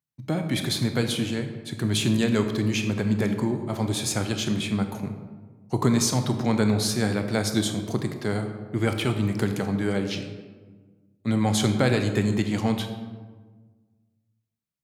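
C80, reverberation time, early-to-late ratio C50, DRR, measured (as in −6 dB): 9.0 dB, 1.4 s, 7.5 dB, 6.0 dB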